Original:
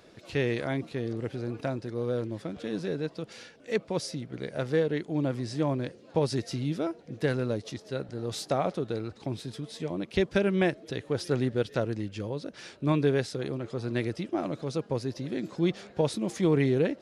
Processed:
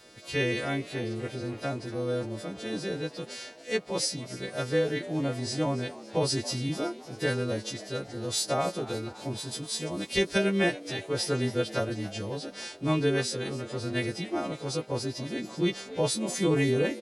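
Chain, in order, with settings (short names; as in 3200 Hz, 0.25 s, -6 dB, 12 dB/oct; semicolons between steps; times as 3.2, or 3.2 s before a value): frequency quantiser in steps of 2 st; 9.51–10.38 high shelf 4600 Hz +7 dB; frequency-shifting echo 0.28 s, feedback 55%, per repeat +92 Hz, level -17 dB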